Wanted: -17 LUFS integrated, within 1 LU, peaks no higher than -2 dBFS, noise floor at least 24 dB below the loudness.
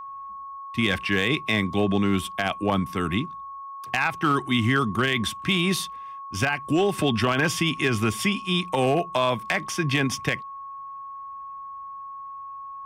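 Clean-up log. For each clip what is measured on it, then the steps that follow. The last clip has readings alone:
clipped samples 0.2%; clipping level -13.5 dBFS; steady tone 1.1 kHz; tone level -35 dBFS; loudness -24.0 LUFS; peak level -13.5 dBFS; loudness target -17.0 LUFS
-> clip repair -13.5 dBFS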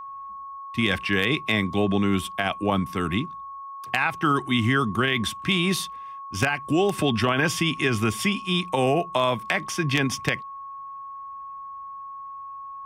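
clipped samples 0.0%; steady tone 1.1 kHz; tone level -35 dBFS
-> band-stop 1.1 kHz, Q 30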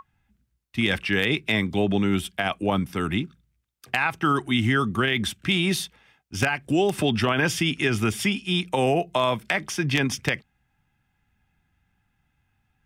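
steady tone not found; loudness -24.0 LUFS; peak level -4.5 dBFS; loudness target -17.0 LUFS
-> trim +7 dB; peak limiter -2 dBFS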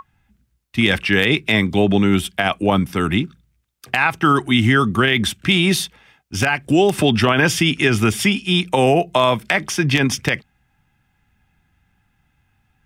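loudness -17.0 LUFS; peak level -2.0 dBFS; noise floor -66 dBFS

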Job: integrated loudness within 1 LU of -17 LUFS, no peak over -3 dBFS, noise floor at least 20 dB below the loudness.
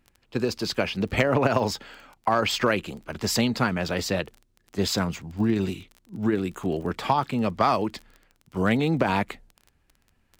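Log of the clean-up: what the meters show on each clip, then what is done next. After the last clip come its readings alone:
tick rate 24 per s; loudness -26.0 LUFS; peak level -9.5 dBFS; loudness target -17.0 LUFS
-> de-click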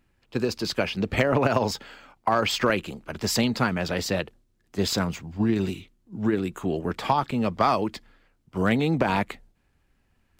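tick rate 0.096 per s; loudness -26.0 LUFS; peak level -9.5 dBFS; loudness target -17.0 LUFS
-> trim +9 dB; peak limiter -3 dBFS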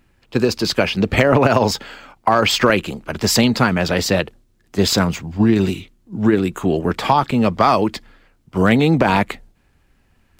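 loudness -17.5 LUFS; peak level -3.0 dBFS; noise floor -59 dBFS

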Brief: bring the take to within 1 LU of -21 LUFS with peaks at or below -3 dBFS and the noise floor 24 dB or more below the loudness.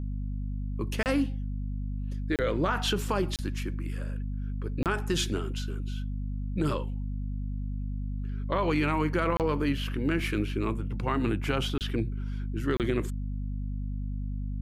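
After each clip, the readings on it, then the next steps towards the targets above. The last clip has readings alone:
dropouts 7; longest dropout 28 ms; hum 50 Hz; highest harmonic 250 Hz; hum level -30 dBFS; loudness -31.0 LUFS; peak level -14.0 dBFS; loudness target -21.0 LUFS
-> interpolate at 1.03/2.36/3.36/4.83/9.37/11.78/12.77 s, 28 ms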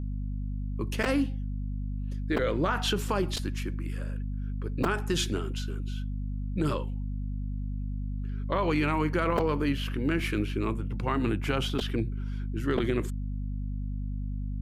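dropouts 0; hum 50 Hz; highest harmonic 250 Hz; hum level -30 dBFS
-> hum notches 50/100/150/200/250 Hz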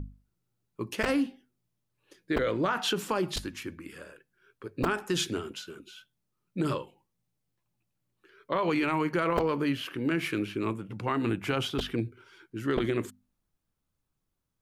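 hum not found; loudness -30.5 LUFS; peak level -13.0 dBFS; loudness target -21.0 LUFS
-> trim +9.5 dB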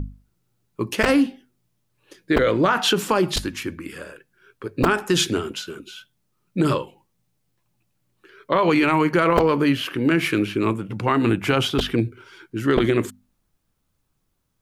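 loudness -21.0 LUFS; peak level -3.5 dBFS; noise floor -72 dBFS

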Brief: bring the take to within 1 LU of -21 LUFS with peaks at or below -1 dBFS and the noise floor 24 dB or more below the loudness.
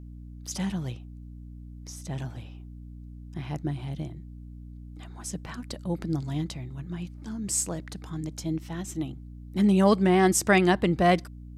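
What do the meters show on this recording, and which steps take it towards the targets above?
hum 60 Hz; highest harmonic 300 Hz; hum level -40 dBFS; loudness -27.0 LUFS; peak level -9.0 dBFS; loudness target -21.0 LUFS
-> hum notches 60/120/180/240/300 Hz; trim +6 dB

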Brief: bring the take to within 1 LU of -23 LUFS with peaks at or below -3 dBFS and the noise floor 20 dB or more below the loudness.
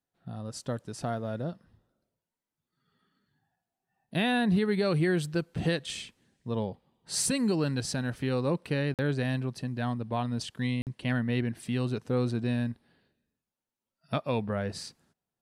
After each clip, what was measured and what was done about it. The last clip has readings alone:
dropouts 2; longest dropout 48 ms; loudness -30.5 LUFS; peak level -17.5 dBFS; loudness target -23.0 LUFS
-> interpolate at 8.94/10.82 s, 48 ms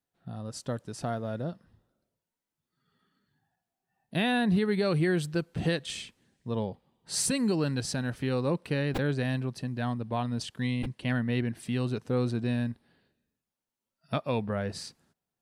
dropouts 0; loudness -30.5 LUFS; peak level -17.5 dBFS; loudness target -23.0 LUFS
-> trim +7.5 dB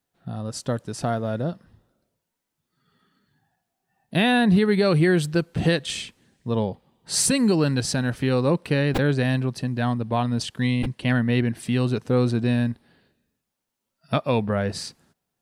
loudness -23.0 LUFS; peak level -10.0 dBFS; noise floor -82 dBFS

